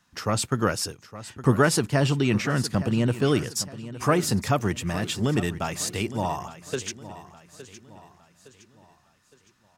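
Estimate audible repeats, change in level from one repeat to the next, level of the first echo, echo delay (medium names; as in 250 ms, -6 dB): 3, -7.5 dB, -15.0 dB, 863 ms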